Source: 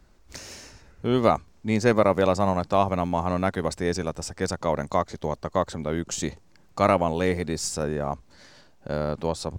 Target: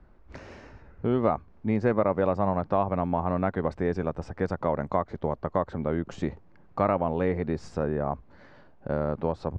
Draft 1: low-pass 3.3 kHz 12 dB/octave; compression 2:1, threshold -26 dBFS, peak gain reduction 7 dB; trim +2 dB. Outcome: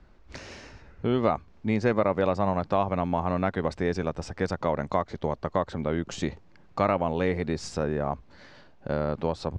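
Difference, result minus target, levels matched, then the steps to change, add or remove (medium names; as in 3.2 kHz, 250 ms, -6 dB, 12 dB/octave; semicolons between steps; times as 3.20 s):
4 kHz band +10.5 dB
change: low-pass 1.6 kHz 12 dB/octave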